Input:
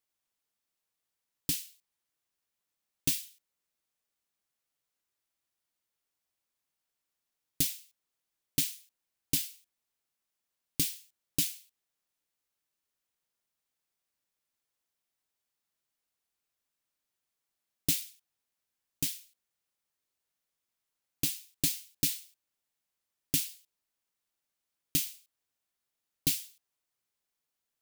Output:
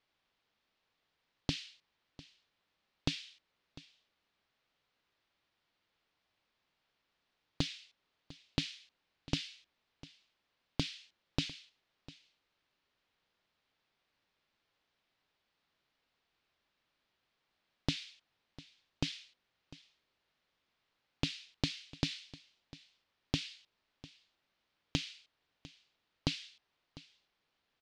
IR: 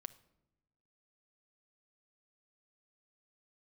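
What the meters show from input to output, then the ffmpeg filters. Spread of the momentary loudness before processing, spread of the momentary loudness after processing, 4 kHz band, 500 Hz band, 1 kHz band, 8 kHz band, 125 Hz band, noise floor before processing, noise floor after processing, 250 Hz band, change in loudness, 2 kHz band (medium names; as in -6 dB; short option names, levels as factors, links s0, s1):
15 LU, 20 LU, -1.5 dB, +4.5 dB, no reading, -17.5 dB, +2.0 dB, under -85 dBFS, -83 dBFS, +1.0 dB, -8.0 dB, +1.0 dB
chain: -filter_complex "[0:a]lowpass=f=4300:w=0.5412,lowpass=f=4300:w=1.3066,acompressor=threshold=0.00794:ratio=4,asplit=2[s0][s1];[s1]aecho=0:1:700:0.112[s2];[s0][s2]amix=inputs=2:normalize=0,volume=3.35"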